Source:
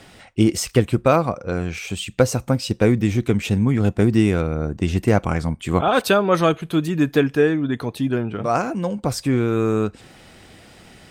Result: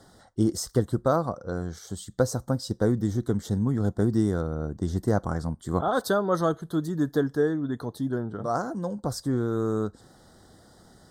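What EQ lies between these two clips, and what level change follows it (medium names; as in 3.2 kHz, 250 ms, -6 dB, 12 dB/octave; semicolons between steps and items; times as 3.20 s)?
Butterworth band-stop 2.5 kHz, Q 1.1; -7.0 dB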